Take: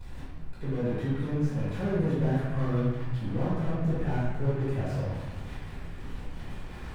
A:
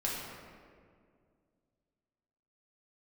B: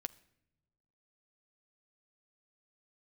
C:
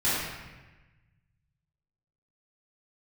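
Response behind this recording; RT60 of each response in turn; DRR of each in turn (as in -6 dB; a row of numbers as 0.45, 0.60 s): C; 2.1 s, not exponential, 1.2 s; -5.5, 10.5, -12.0 dB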